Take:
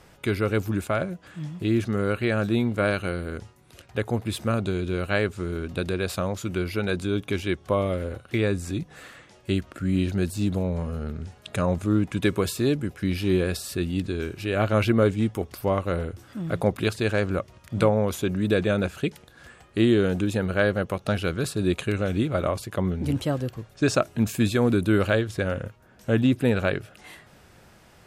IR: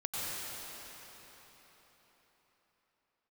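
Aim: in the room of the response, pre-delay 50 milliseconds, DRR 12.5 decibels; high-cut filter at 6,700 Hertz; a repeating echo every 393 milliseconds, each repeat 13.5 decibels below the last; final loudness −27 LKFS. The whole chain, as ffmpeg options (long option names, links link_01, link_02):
-filter_complex "[0:a]lowpass=6700,aecho=1:1:393|786:0.211|0.0444,asplit=2[link_01][link_02];[1:a]atrim=start_sample=2205,adelay=50[link_03];[link_02][link_03]afir=irnorm=-1:irlink=0,volume=-18dB[link_04];[link_01][link_04]amix=inputs=2:normalize=0,volume=-1.5dB"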